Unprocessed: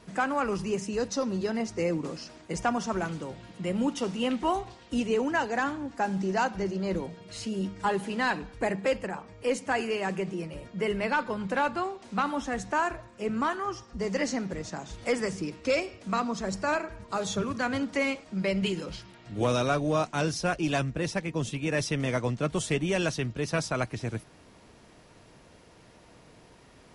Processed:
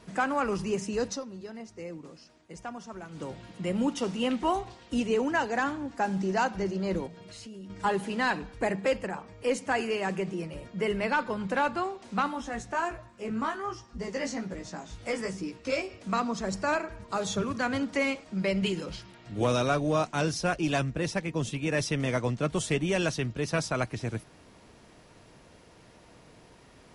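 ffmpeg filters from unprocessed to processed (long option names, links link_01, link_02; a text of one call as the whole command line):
ffmpeg -i in.wav -filter_complex "[0:a]asettb=1/sr,asplit=3[link_01][link_02][link_03];[link_01]atrim=end=7.074[link_04];[link_02]atrim=start=7.07:end=7.7,asetpts=PTS-STARTPTS,afade=type=in:duration=0.004:curve=qsin,afade=type=out:start_time=0.626:duration=0.004:curve=qsin,acompressor=threshold=-43dB:ratio=4:attack=3.2:release=140:knee=1:detection=peak[link_05];[link_03]atrim=start=7.696[link_06];[link_04][link_05]acrossfade=duration=0.004:curve1=hsin:curve2=qsin[link_07];[link_07][link_06]acrossfade=duration=0.004:curve1=qsin:curve2=hsin,asplit=3[link_08][link_09][link_10];[link_08]afade=type=out:start_time=12.27:duration=0.02[link_11];[link_09]flanger=delay=16:depth=2.6:speed=1.3,afade=type=in:start_time=12.27:duration=0.02,afade=type=out:start_time=15.89:duration=0.02[link_12];[link_10]afade=type=in:start_time=15.89:duration=0.02[link_13];[link_11][link_12][link_13]amix=inputs=3:normalize=0,asplit=3[link_14][link_15][link_16];[link_14]atrim=end=1.26,asetpts=PTS-STARTPTS,afade=type=out:start_time=1.12:duration=0.14:curve=qua:silence=0.251189[link_17];[link_15]atrim=start=1.26:end=3.08,asetpts=PTS-STARTPTS,volume=-12dB[link_18];[link_16]atrim=start=3.08,asetpts=PTS-STARTPTS,afade=type=in:duration=0.14:curve=qua:silence=0.251189[link_19];[link_17][link_18][link_19]concat=n=3:v=0:a=1" out.wav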